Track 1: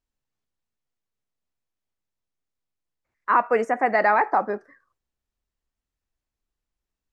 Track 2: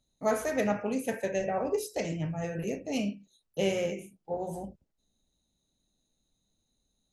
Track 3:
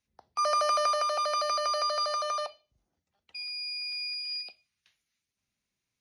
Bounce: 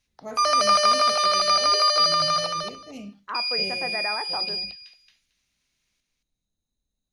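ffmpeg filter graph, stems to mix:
-filter_complex "[0:a]volume=-12.5dB[a];[1:a]lowshelf=f=120:g=8.5,volume=-10dB[b];[2:a]equalizer=f=3.8k:w=0.37:g=9.5,volume=1.5dB,asplit=2[c][d];[d]volume=-4dB,aecho=0:1:224|448|672:1|0.15|0.0225[e];[a][b][c][e]amix=inputs=4:normalize=0"

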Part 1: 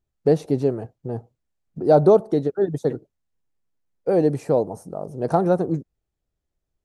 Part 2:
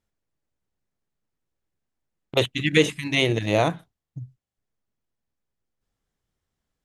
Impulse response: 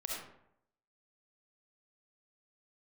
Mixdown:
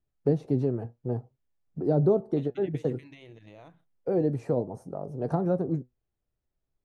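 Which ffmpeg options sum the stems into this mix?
-filter_complex "[0:a]acrossover=split=340[a][b];[b]acompressor=threshold=-30dB:ratio=2.5[c];[a][c]amix=inputs=2:normalize=0,flanger=delay=6.7:depth=1.9:regen=70:speed=0.57:shape=triangular,volume=1.5dB[d];[1:a]alimiter=limit=-13.5dB:level=0:latency=1:release=152,acompressor=threshold=-26dB:ratio=6,volume=-19dB[e];[d][e]amix=inputs=2:normalize=0,highshelf=f=4.8k:g=-12"

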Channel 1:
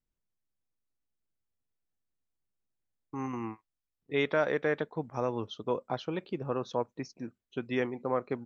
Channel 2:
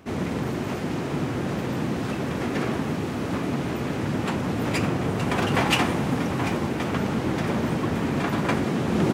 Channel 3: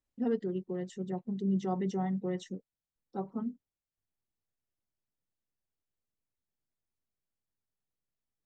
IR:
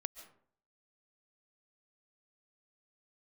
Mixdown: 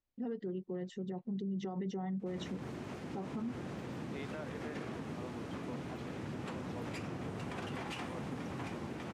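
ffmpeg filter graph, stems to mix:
-filter_complex "[0:a]volume=-18dB[a];[1:a]lowpass=11k,adelay=2200,volume=-15.5dB[b];[2:a]lowpass=4.7k,dynaudnorm=f=290:g=7:m=5dB,alimiter=limit=-23dB:level=0:latency=1:release=49,volume=-1.5dB[c];[a][b][c]amix=inputs=3:normalize=0,alimiter=level_in=8dB:limit=-24dB:level=0:latency=1:release=74,volume=-8dB"

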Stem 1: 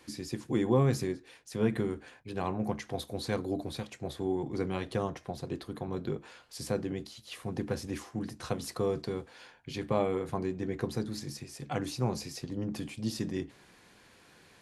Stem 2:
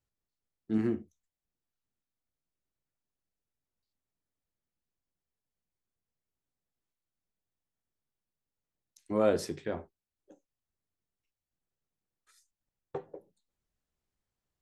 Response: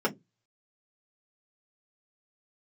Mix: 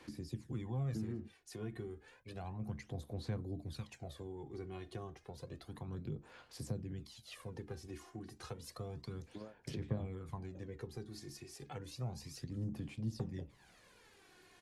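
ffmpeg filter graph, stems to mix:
-filter_complex "[0:a]aphaser=in_gain=1:out_gain=1:delay=2.8:decay=0.58:speed=0.31:type=sinusoidal,volume=-6.5dB,asplit=2[a][b];[1:a]highshelf=f=3.9k:g=-7,acompressor=threshold=-31dB:ratio=6,adelay=250,volume=3dB[c];[b]apad=whole_len=655661[d];[c][d]sidechaingate=range=-36dB:threshold=-55dB:ratio=16:detection=peak[e];[a][e]amix=inputs=2:normalize=0,acrossover=split=150[f][g];[g]acompressor=threshold=-49dB:ratio=3[h];[f][h]amix=inputs=2:normalize=0"

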